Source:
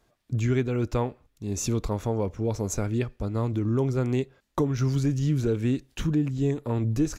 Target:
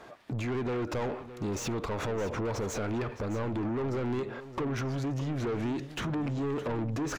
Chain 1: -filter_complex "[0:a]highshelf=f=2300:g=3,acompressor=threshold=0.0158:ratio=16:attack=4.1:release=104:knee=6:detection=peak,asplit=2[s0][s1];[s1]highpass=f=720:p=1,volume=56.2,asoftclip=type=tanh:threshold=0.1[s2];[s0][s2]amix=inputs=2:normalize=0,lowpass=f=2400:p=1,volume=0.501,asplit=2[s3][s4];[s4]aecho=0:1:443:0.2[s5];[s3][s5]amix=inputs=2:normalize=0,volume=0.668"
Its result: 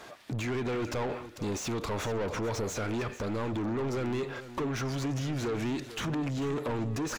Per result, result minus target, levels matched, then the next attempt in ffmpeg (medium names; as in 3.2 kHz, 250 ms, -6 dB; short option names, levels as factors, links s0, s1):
echo 172 ms early; 4 kHz band +3.5 dB
-filter_complex "[0:a]highshelf=f=2300:g=3,acompressor=threshold=0.0158:ratio=16:attack=4.1:release=104:knee=6:detection=peak,asplit=2[s0][s1];[s1]highpass=f=720:p=1,volume=56.2,asoftclip=type=tanh:threshold=0.1[s2];[s0][s2]amix=inputs=2:normalize=0,lowpass=f=2400:p=1,volume=0.501,asplit=2[s3][s4];[s4]aecho=0:1:615:0.2[s5];[s3][s5]amix=inputs=2:normalize=0,volume=0.668"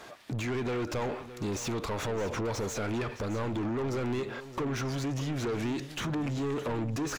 4 kHz band +3.5 dB
-filter_complex "[0:a]highshelf=f=2300:g=-8,acompressor=threshold=0.0158:ratio=16:attack=4.1:release=104:knee=6:detection=peak,asplit=2[s0][s1];[s1]highpass=f=720:p=1,volume=56.2,asoftclip=type=tanh:threshold=0.1[s2];[s0][s2]amix=inputs=2:normalize=0,lowpass=f=2400:p=1,volume=0.501,asplit=2[s3][s4];[s4]aecho=0:1:615:0.2[s5];[s3][s5]amix=inputs=2:normalize=0,volume=0.668"